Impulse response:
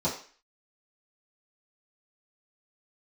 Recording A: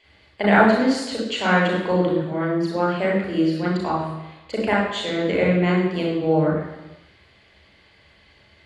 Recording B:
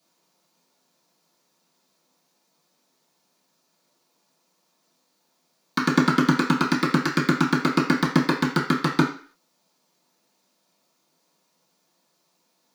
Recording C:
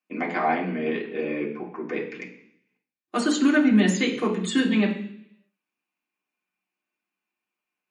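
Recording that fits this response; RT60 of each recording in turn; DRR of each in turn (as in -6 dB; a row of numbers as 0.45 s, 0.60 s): B; 1.0 s, 0.40 s, 0.65 s; -4.0 dB, -10.5 dB, -4.0 dB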